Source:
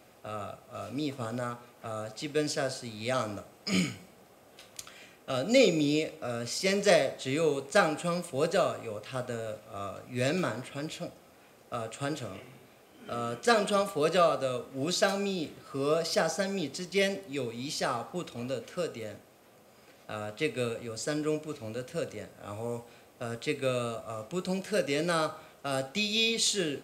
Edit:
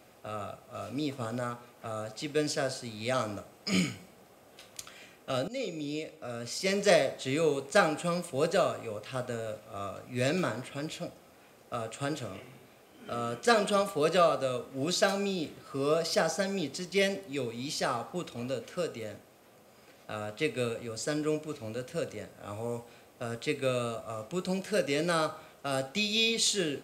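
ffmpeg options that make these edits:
-filter_complex "[0:a]asplit=2[s0][s1];[s0]atrim=end=5.48,asetpts=PTS-STARTPTS,afade=t=out:st=5.476:d=0.004:c=hsin:silence=0.133352[s2];[s1]atrim=start=5.48,asetpts=PTS-STARTPTS,afade=t=in:d=1.51:silence=0.133352[s3];[s2][s3]concat=n=2:v=0:a=1"

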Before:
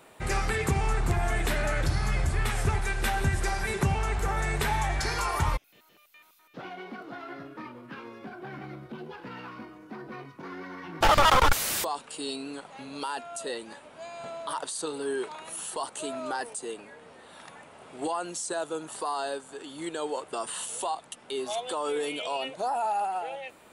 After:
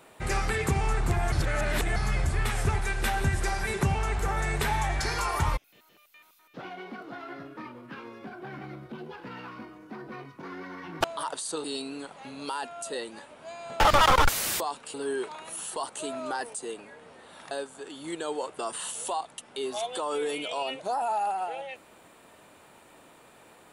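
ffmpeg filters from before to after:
-filter_complex "[0:a]asplit=8[s0][s1][s2][s3][s4][s5][s6][s7];[s0]atrim=end=1.322[s8];[s1]atrim=start=1.318:end=1.962,asetpts=PTS-STARTPTS,areverse[s9];[s2]atrim=start=1.958:end=11.042[s10];[s3]atrim=start=14.338:end=14.942[s11];[s4]atrim=start=12.178:end=14.342[s12];[s5]atrim=start=11.038:end=12.182[s13];[s6]atrim=start=14.938:end=17.512[s14];[s7]atrim=start=19.248[s15];[s8][s9]acrossfade=d=0.004:c1=hsin:c2=hsin[s16];[s16][s10]acrossfade=d=0.004:c1=hsin:c2=hsin[s17];[s17][s11]acrossfade=d=0.004:c1=hsin:c2=hsin[s18];[s18][s12]acrossfade=d=0.004:c1=hsin:c2=hsin[s19];[s19][s13]acrossfade=d=0.004:c1=hsin:c2=hsin[s20];[s20][s14]acrossfade=d=0.004:c1=hsin:c2=hsin[s21];[s21][s15]acrossfade=d=0.004:c1=hsin:c2=hsin"

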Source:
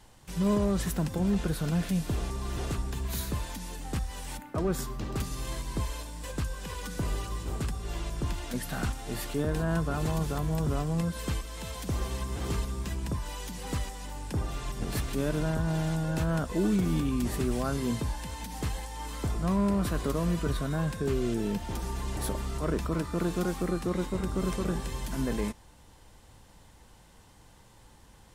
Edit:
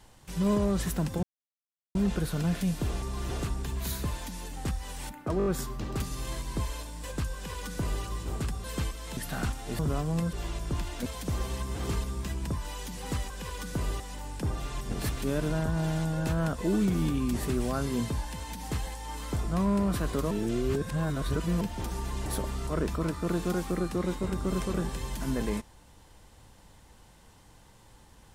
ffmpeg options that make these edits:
-filter_complex "[0:a]asplit=15[s0][s1][s2][s3][s4][s5][s6][s7][s8][s9][s10][s11][s12][s13][s14];[s0]atrim=end=1.23,asetpts=PTS-STARTPTS,afade=t=out:st=1.226:d=0.004:c=hsin,apad=pad_dur=0.72[s15];[s1]atrim=start=1.23:end=4.682,asetpts=PTS-STARTPTS,afade=t=in:d=0.004:c=hsin[s16];[s2]atrim=start=4.658:end=4.682[s17];[s3]atrim=start=4.658:end=4.682[s18];[s4]atrim=start=4.658:end=4.682[s19];[s5]atrim=start=4.658:end=7.842[s20];[s6]atrim=start=11.138:end=11.672[s21];[s7]atrim=start=8.568:end=9.192[s22];[s8]atrim=start=10.598:end=11.142[s23];[s9]atrim=start=7.838:end=8.572[s24];[s10]atrim=start=11.668:end=13.912[s25];[s11]atrim=start=6.538:end=7.242[s26];[s12]atrim=start=13.908:end=20.222[s27];[s13]atrim=start=20.218:end=21.522,asetpts=PTS-STARTPTS,areverse[s28];[s14]atrim=start=21.518[s29];[s15][s16]concat=n=2:v=0:a=1[s30];[s30][s17]acrossfade=d=0.004:c1=hsin:c2=hsin[s31];[s31][s18]acrossfade=d=0.004:c1=hsin:c2=hsin[s32];[s32][s19]acrossfade=d=0.004:c1=hsin:c2=hsin[s33];[s33][s20]acrossfade=d=0.004:c1=hsin:c2=hsin[s34];[s34][s21]acrossfade=d=0.004:c1=hsin:c2=hsin[s35];[s35][s22]acrossfade=d=0.004:c1=hsin:c2=hsin[s36];[s36][s23]acrossfade=d=0.004:c1=hsin:c2=hsin[s37];[s37][s24]acrossfade=d=0.004:c1=hsin:c2=hsin[s38];[s38][s25]acrossfade=d=0.004:c1=hsin:c2=hsin[s39];[s39][s26]acrossfade=d=0.004:c1=hsin:c2=hsin[s40];[s40][s27]acrossfade=d=0.004:c1=hsin:c2=hsin[s41];[s41][s28]acrossfade=d=0.004:c1=hsin:c2=hsin[s42];[s42][s29]acrossfade=d=0.004:c1=hsin:c2=hsin"

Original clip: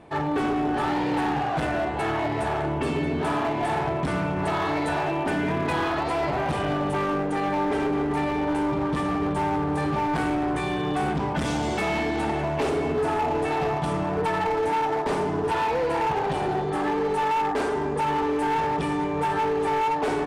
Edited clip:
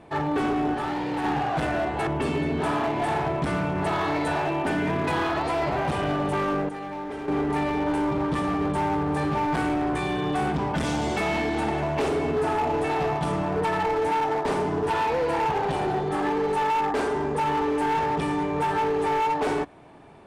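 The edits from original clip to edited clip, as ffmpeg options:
-filter_complex "[0:a]asplit=6[s0][s1][s2][s3][s4][s5];[s0]atrim=end=0.742[s6];[s1]atrim=start=0.738:end=1.242,asetpts=PTS-STARTPTS,volume=0.668[s7];[s2]atrim=start=1.238:end=2.072[s8];[s3]atrim=start=2.678:end=7.302[s9];[s4]atrim=start=7.298:end=7.892,asetpts=PTS-STARTPTS,volume=0.355[s10];[s5]atrim=start=7.888[s11];[s6][s7]acrossfade=d=0.004:c1=hsin:c2=hsin[s12];[s12][s8]acrossfade=d=0.004:c1=hsin:c2=hsin[s13];[s13][s9]acrossfade=d=0.004:c1=hsin:c2=hsin[s14];[s14][s10]acrossfade=d=0.004:c1=hsin:c2=hsin[s15];[s15][s11]acrossfade=d=0.004:c1=hsin:c2=hsin"

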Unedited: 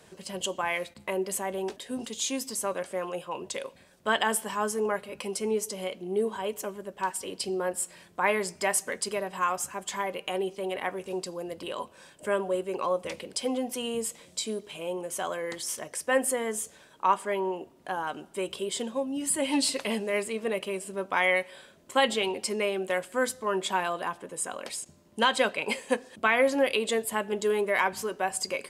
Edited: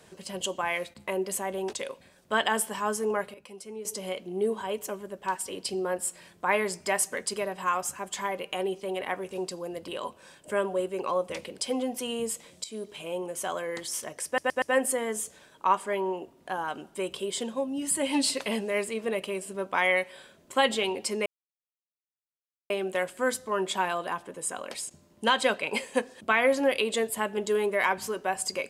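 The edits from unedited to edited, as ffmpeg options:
-filter_complex "[0:a]asplit=9[s0][s1][s2][s3][s4][s5][s6][s7][s8];[s0]atrim=end=1.732[s9];[s1]atrim=start=3.478:end=5.092[s10];[s2]atrim=start=5.088:end=5.602,asetpts=PTS-STARTPTS,volume=0.266[s11];[s3]atrim=start=5.598:end=14.39,asetpts=PTS-STARTPTS,afade=t=out:st=8.788:d=0.004:c=hsin:silence=0.199526[s12];[s4]atrim=start=14.39:end=16.132,asetpts=PTS-STARTPTS,afade=t=in:d=0.26:silence=0.199526[s13];[s5]atrim=start=16.008:end=16.132[s14];[s6]atrim=start=16.008:end=16.132[s15];[s7]atrim=start=16.008:end=22.65,asetpts=PTS-STARTPTS,afade=t=out:st=6.638:d=0.004:c=hsin,apad=pad_dur=1.44[s16];[s8]atrim=start=22.65,asetpts=PTS-STARTPTS,afade=t=in:d=0.004:c=hsin[s17];[s9][s10]acrossfade=d=0.004:c1=hsin:c2=hsin[s18];[s18][s11]acrossfade=d=0.004:c1=hsin:c2=hsin[s19];[s12][s13]concat=n=2:v=0:a=1[s20];[s19][s20]acrossfade=d=0.004:c1=hsin:c2=hsin[s21];[s21][s14]acrossfade=d=0.004:c1=hsin:c2=hsin[s22];[s22][s15]acrossfade=d=0.004:c1=hsin:c2=hsin[s23];[s16][s17]concat=n=2:v=0:a=1[s24];[s23][s24]acrossfade=d=0.004:c1=hsin:c2=hsin"

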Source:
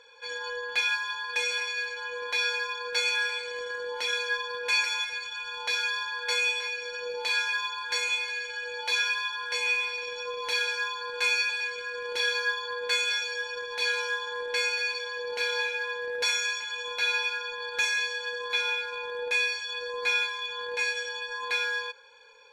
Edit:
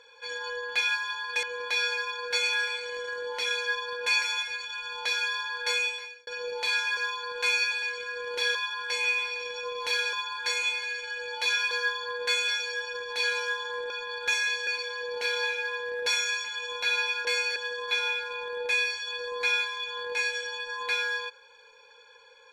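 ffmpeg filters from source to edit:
-filter_complex "[0:a]asplit=11[s0][s1][s2][s3][s4][s5][s6][s7][s8][s9][s10];[s0]atrim=end=1.432[s11];[s1]atrim=start=2.048:end=6.89,asetpts=PTS-STARTPTS,afade=t=out:st=4.302:d=0.54[s12];[s2]atrim=start=6.89:end=7.592,asetpts=PTS-STARTPTS,afade=t=in:d=0.004:c=hsin[s13];[s3]atrim=start=10.748:end=12.332[s14];[s4]atrim=start=9.168:end=10.752[s15];[s5]atrim=start=7.588:end=9.172[s16];[s6]atrim=start=12.328:end=14.522[s17];[s7]atrim=start=17.408:end=18.182[s18];[s8]atrim=start=14.828:end=17.412[s19];[s9]atrim=start=14.518:end=14.832[s20];[s10]atrim=start=18.178[s21];[s12][s13]concat=n=2:v=0:a=1[s22];[s11][s22]acrossfade=d=0.004:c1=hsin:c2=hsin[s23];[s23][s14]acrossfade=d=0.004:c1=hsin:c2=hsin[s24];[s24][s15]acrossfade=d=0.004:c1=hsin:c2=hsin[s25];[s25][s16]acrossfade=d=0.004:c1=hsin:c2=hsin[s26];[s26][s17]acrossfade=d=0.004:c1=hsin:c2=hsin[s27];[s27][s18]acrossfade=d=0.004:c1=hsin:c2=hsin[s28];[s28][s19]acrossfade=d=0.004:c1=hsin:c2=hsin[s29];[s29][s20]acrossfade=d=0.004:c1=hsin:c2=hsin[s30];[s30][s21]acrossfade=d=0.004:c1=hsin:c2=hsin"

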